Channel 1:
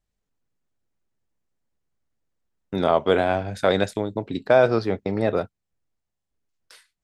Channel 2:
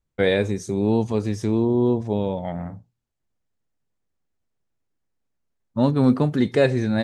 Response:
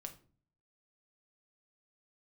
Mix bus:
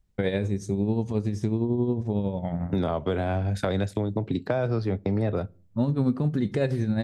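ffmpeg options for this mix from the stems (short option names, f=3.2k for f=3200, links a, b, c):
-filter_complex "[0:a]acrossover=split=150[a][b];[b]acompressor=threshold=-27dB:ratio=2[c];[a][c]amix=inputs=2:normalize=0,volume=0dB,asplit=2[d][e];[e]volume=-16dB[f];[1:a]tremolo=f=11:d=0.52,volume=-4dB,asplit=2[g][h];[h]volume=-7dB[i];[2:a]atrim=start_sample=2205[j];[f][i]amix=inputs=2:normalize=0[k];[k][j]afir=irnorm=-1:irlink=0[l];[d][g][l]amix=inputs=3:normalize=0,lowshelf=f=230:g=11.5,acompressor=threshold=-24dB:ratio=2.5"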